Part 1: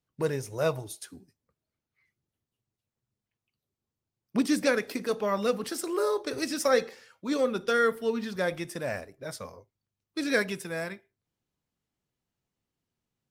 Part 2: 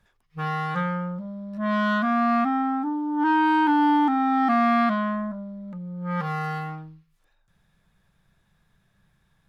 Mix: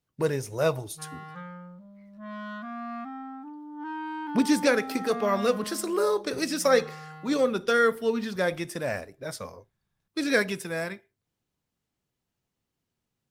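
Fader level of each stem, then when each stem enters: +2.5, −15.0 decibels; 0.00, 0.60 seconds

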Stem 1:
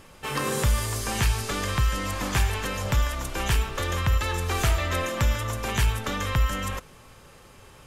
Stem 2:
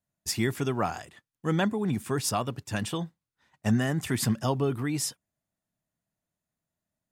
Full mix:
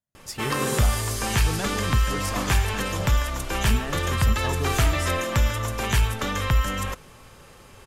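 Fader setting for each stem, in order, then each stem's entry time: +2.0, −5.5 decibels; 0.15, 0.00 seconds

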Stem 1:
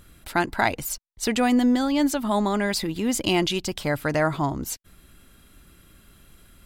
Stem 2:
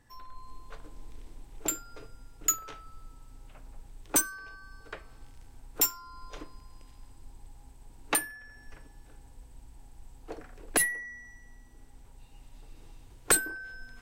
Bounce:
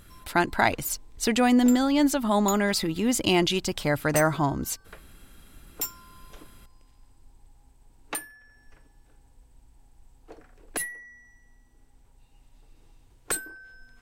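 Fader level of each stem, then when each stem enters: 0.0, −5.5 decibels; 0.00, 0.00 seconds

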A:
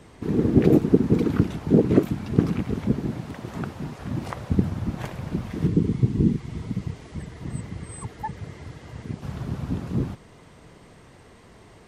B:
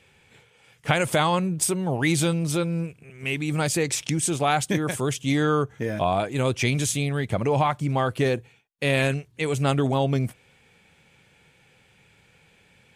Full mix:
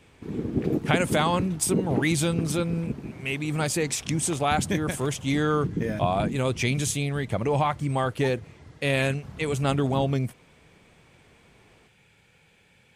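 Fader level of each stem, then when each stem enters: −9.0, −2.0 decibels; 0.00, 0.00 seconds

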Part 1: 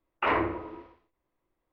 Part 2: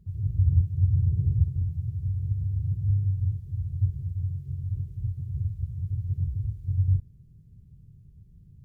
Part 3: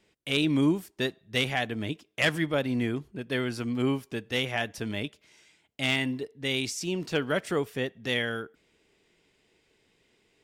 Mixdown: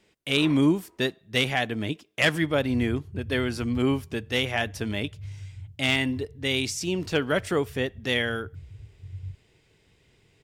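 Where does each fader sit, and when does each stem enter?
−17.0, −14.5, +3.0 decibels; 0.15, 2.35, 0.00 seconds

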